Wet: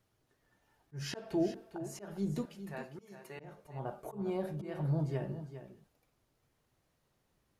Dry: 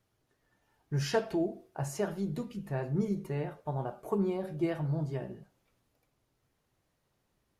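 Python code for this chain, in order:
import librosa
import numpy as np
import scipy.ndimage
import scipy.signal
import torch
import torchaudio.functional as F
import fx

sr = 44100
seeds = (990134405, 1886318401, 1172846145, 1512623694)

y = fx.highpass(x, sr, hz=1400.0, slope=6, at=(2.45, 3.4))
y = fx.auto_swell(y, sr, attack_ms=268.0)
y = y + 10.0 ** (-11.5 / 20.0) * np.pad(y, (int(404 * sr / 1000.0), 0))[:len(y)]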